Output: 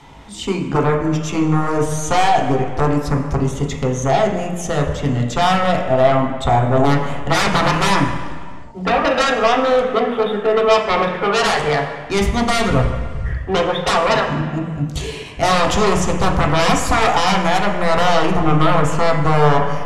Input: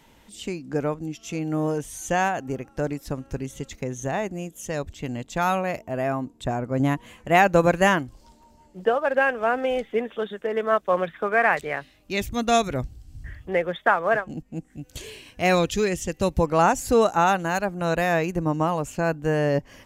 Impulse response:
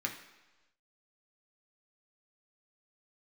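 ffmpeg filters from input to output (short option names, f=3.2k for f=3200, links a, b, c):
-filter_complex "[0:a]aeval=exprs='0.596*sin(PI/2*7.08*val(0)/0.596)':c=same,adynamicsmooth=sensitivity=4.5:basefreq=7.3k[a];[1:a]atrim=start_sample=2205,afade=t=out:st=0.44:d=0.01,atrim=end_sample=19845,asetrate=23373,aresample=44100[b];[a][b]afir=irnorm=-1:irlink=0,volume=-13.5dB"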